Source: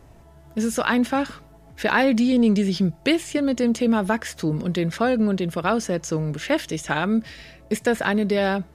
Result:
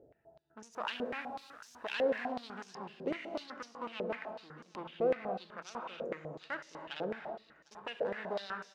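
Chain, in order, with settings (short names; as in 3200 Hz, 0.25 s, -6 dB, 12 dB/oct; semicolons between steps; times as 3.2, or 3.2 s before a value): Wiener smoothing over 41 samples; in parallel at +1 dB: compressor, threshold -27 dBFS, peak gain reduction 11.5 dB; on the sum: one-sided clip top -20 dBFS; 0.72–2.25 added noise white -48 dBFS; soft clip -15 dBFS, distortion -15 dB; on a send: feedback echo 0.752 s, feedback 39%, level -16 dB; on the sum: non-linear reverb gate 0.35 s flat, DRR 4.5 dB; stepped band-pass 8 Hz 500–5900 Hz; gain -2.5 dB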